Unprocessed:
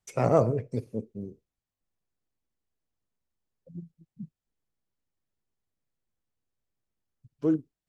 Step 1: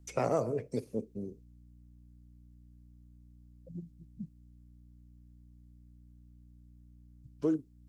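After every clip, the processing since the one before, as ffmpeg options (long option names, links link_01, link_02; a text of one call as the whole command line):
ffmpeg -i in.wav -filter_complex "[0:a]aeval=exprs='val(0)+0.00141*(sin(2*PI*60*n/s)+sin(2*PI*2*60*n/s)/2+sin(2*PI*3*60*n/s)/3+sin(2*PI*4*60*n/s)/4+sin(2*PI*5*60*n/s)/5)':channel_layout=same,acrossover=split=230|5400[link_01][link_02][link_03];[link_01]acompressor=threshold=-46dB:ratio=4[link_04];[link_02]acompressor=threshold=-27dB:ratio=4[link_05];[link_03]acompressor=threshold=-58dB:ratio=4[link_06];[link_04][link_05][link_06]amix=inputs=3:normalize=0,bass=frequency=250:gain=2,treble=frequency=4000:gain=5" out.wav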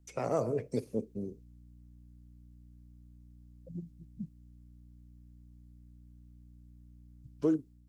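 ffmpeg -i in.wav -af "dynaudnorm=framelen=220:gausssize=3:maxgain=7dB,volume=-5.5dB" out.wav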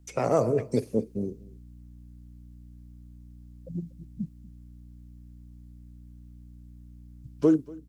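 ffmpeg -i in.wav -af "aecho=1:1:238:0.075,volume=7.5dB" out.wav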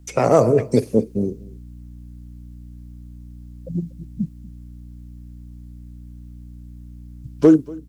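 ffmpeg -i in.wav -af "asoftclip=type=hard:threshold=-12dB,volume=9dB" out.wav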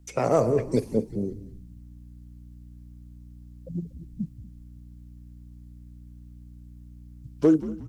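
ffmpeg -i in.wav -filter_complex "[0:a]asplit=5[link_01][link_02][link_03][link_04][link_05];[link_02]adelay=180,afreqshift=-100,volume=-15dB[link_06];[link_03]adelay=360,afreqshift=-200,volume=-22.5dB[link_07];[link_04]adelay=540,afreqshift=-300,volume=-30.1dB[link_08];[link_05]adelay=720,afreqshift=-400,volume=-37.6dB[link_09];[link_01][link_06][link_07][link_08][link_09]amix=inputs=5:normalize=0,volume=-7dB" out.wav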